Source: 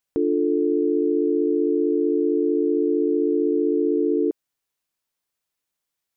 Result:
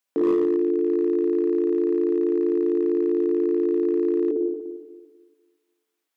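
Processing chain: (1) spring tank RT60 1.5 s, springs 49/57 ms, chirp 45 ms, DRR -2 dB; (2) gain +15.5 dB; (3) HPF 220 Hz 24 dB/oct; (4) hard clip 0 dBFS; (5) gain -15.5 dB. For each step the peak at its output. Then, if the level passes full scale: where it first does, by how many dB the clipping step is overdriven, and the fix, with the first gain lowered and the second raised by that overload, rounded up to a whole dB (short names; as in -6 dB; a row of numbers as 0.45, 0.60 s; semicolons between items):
-10.0, +5.5, +5.5, 0.0, -15.5 dBFS; step 2, 5.5 dB; step 2 +9.5 dB, step 5 -9.5 dB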